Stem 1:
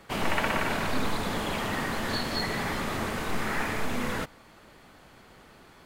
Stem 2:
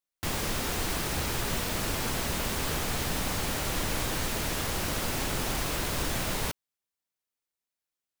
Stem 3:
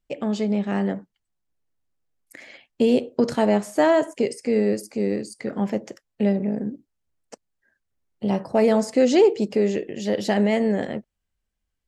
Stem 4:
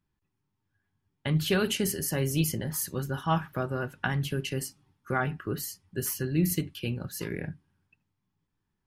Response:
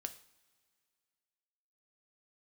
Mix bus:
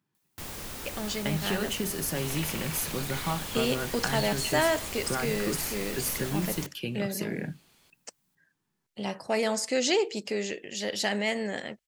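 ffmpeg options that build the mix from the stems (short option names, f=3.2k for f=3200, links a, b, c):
-filter_complex "[0:a]aexciter=amount=4.2:drive=5:freq=2.3k,adelay=2050,volume=-15.5dB[a];[1:a]acompressor=mode=upward:threshold=-53dB:ratio=2.5,highshelf=f=8.3k:g=6.5,adelay=150,volume=-10dB[b];[2:a]tiltshelf=f=1.1k:g=-9,adelay=750,volume=-4dB[c];[3:a]acompressor=threshold=-30dB:ratio=6,highpass=f=130:w=0.5412,highpass=f=130:w=1.3066,volume=2.5dB[d];[a][b][c][d]amix=inputs=4:normalize=0"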